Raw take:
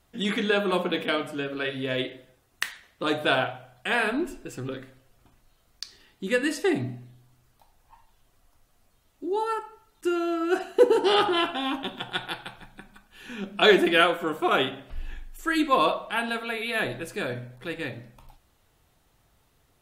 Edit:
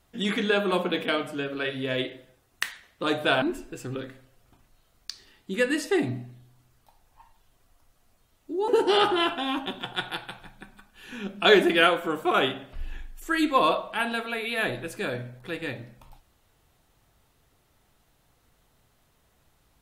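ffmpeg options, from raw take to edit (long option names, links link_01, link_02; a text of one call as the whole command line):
ffmpeg -i in.wav -filter_complex "[0:a]asplit=3[link_01][link_02][link_03];[link_01]atrim=end=3.422[link_04];[link_02]atrim=start=4.148:end=9.412[link_05];[link_03]atrim=start=10.848[link_06];[link_04][link_05]acrossfade=duration=0.004:curve1=hsin:curve2=hsin[link_07];[link_07][link_06]acrossfade=duration=0.004:curve1=hsin:curve2=hsin" out.wav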